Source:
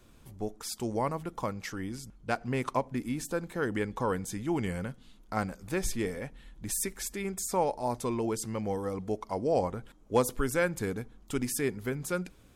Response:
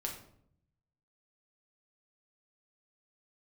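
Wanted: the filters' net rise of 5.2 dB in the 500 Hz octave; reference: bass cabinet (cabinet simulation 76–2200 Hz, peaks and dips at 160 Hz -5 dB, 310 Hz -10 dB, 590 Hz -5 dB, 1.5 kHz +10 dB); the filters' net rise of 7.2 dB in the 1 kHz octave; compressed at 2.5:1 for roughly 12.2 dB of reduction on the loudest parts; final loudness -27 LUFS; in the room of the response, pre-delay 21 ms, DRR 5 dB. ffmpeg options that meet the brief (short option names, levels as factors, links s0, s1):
-filter_complex "[0:a]equalizer=f=500:t=o:g=8,equalizer=f=1000:t=o:g=5.5,acompressor=threshold=0.0282:ratio=2.5,asplit=2[s0][s1];[1:a]atrim=start_sample=2205,adelay=21[s2];[s1][s2]afir=irnorm=-1:irlink=0,volume=0.531[s3];[s0][s3]amix=inputs=2:normalize=0,highpass=f=76:w=0.5412,highpass=f=76:w=1.3066,equalizer=f=160:t=q:w=4:g=-5,equalizer=f=310:t=q:w=4:g=-10,equalizer=f=590:t=q:w=4:g=-5,equalizer=f=1500:t=q:w=4:g=10,lowpass=f=2200:w=0.5412,lowpass=f=2200:w=1.3066,volume=2.37"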